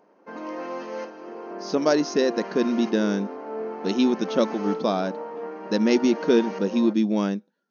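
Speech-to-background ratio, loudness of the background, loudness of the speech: 10.5 dB, -34.5 LUFS, -24.0 LUFS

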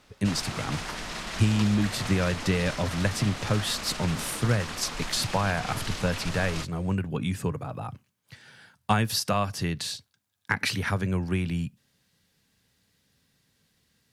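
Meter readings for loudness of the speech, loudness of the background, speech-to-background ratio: -28.5 LUFS, -35.0 LUFS, 6.5 dB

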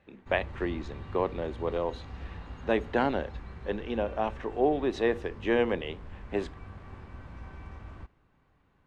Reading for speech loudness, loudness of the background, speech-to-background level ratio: -31.0 LUFS, -45.0 LUFS, 14.0 dB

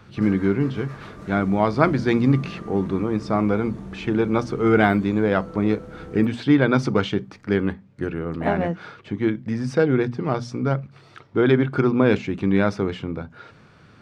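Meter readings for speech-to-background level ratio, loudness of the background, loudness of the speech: 16.5 dB, -38.5 LUFS, -22.0 LUFS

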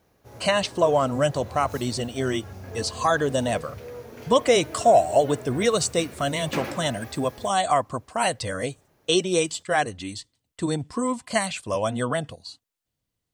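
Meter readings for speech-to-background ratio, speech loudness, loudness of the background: 15.0 dB, -24.5 LUFS, -39.5 LUFS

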